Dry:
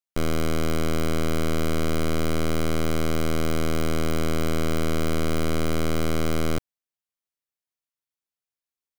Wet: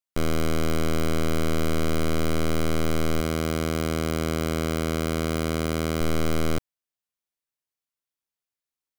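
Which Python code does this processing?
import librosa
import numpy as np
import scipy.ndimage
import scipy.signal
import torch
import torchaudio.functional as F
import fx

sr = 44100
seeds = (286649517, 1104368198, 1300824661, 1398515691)

y = fx.highpass(x, sr, hz=43.0, slope=12, at=(3.2, 6.01))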